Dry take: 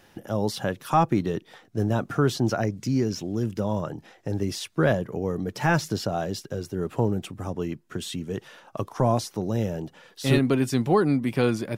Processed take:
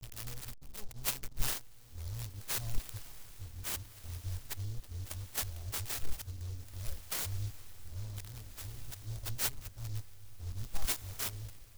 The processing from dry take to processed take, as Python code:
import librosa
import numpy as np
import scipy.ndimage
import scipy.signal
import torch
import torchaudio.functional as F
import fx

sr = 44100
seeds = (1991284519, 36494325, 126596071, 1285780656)

p1 = np.flip(x).copy()
p2 = scipy.signal.sosfilt(scipy.signal.cheby2(4, 50, [140.0, 4400.0], 'bandstop', fs=sr, output='sos'), p1)
p3 = (np.mod(10.0 ** (40.5 / 20.0) * p2 + 1.0, 2.0) - 1.0) / 10.0 ** (40.5 / 20.0)
p4 = p2 + (p3 * librosa.db_to_amplitude(-10.0))
p5 = fx.rotary_switch(p4, sr, hz=6.0, then_hz=0.75, switch_at_s=1.72)
p6 = fx.backlash(p5, sr, play_db=-56.5)
p7 = p6 + fx.echo_diffused(p6, sr, ms=1661, feedback_pct=42, wet_db=-14.0, dry=0)
p8 = fx.noise_mod_delay(p7, sr, seeds[0], noise_hz=4900.0, depth_ms=0.12)
y = p8 * librosa.db_to_amplitude(17.0)